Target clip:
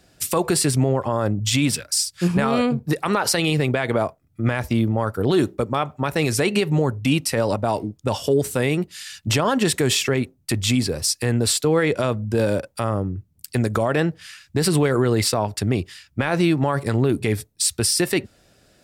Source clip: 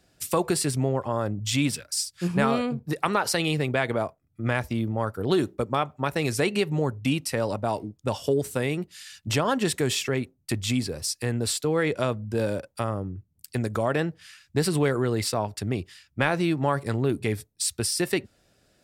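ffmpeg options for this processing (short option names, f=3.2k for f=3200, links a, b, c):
-af "alimiter=level_in=16dB:limit=-1dB:release=50:level=0:latency=1,volume=-8.5dB"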